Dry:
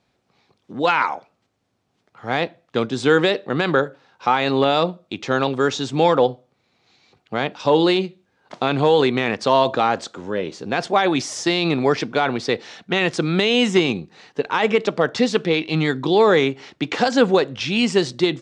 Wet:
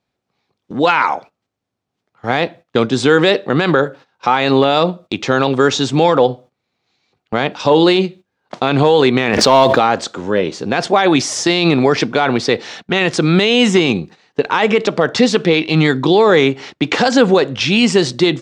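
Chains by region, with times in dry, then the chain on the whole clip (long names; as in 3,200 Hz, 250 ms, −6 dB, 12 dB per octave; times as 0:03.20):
0:09.33–0:09.79: leveller curve on the samples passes 1 + background raised ahead of every attack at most 53 dB per second
whole clip: noise gate −41 dBFS, range −16 dB; boost into a limiter +9.5 dB; level −1 dB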